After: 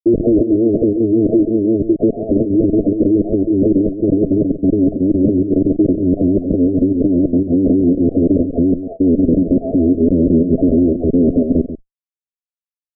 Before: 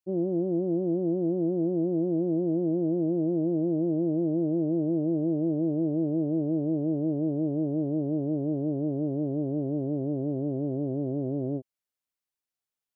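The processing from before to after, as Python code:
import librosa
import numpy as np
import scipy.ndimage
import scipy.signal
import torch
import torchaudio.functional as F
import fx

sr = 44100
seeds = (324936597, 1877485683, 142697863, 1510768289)

p1 = fx.spec_dropout(x, sr, seeds[0], share_pct=36)
p2 = fx.pitch_keep_formants(p1, sr, semitones=-8.5)
p3 = fx.low_shelf(p2, sr, hz=77.0, db=6.5)
p4 = fx.schmitt(p3, sr, flips_db=-44.5)
p5 = p3 + F.gain(torch.from_numpy(p4), -4.0).numpy()
p6 = fx.over_compress(p5, sr, threshold_db=-33.0, ratio=-0.5)
p7 = fx.fuzz(p6, sr, gain_db=44.0, gate_db=-50.0)
p8 = fx.chopper(p7, sr, hz=2.0, depth_pct=60, duty_pct=85)
p9 = scipy.signal.sosfilt(scipy.signal.cheby1(8, 1.0, 660.0, 'lowpass', fs=sr, output='sos'), p8)
p10 = fx.peak_eq(p9, sr, hz=280.0, db=14.0, octaves=2.2)
p11 = p10 + fx.echo_single(p10, sr, ms=138, db=-11.5, dry=0)
y = F.gain(torch.from_numpy(p11), -7.5).numpy()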